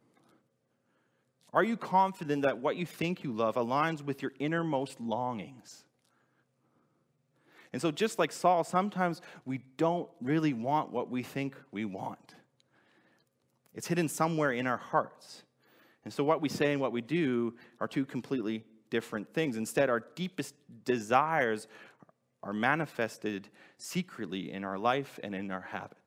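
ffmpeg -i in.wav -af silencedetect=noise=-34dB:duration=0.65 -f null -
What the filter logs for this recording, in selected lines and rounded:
silence_start: 0.00
silence_end: 1.54 | silence_duration: 1.54
silence_start: 5.41
silence_end: 7.74 | silence_duration: 2.33
silence_start: 12.12
silence_end: 13.78 | silence_duration: 1.66
silence_start: 15.05
silence_end: 16.07 | silence_duration: 1.02
silence_start: 21.58
silence_end: 22.44 | silence_duration: 0.86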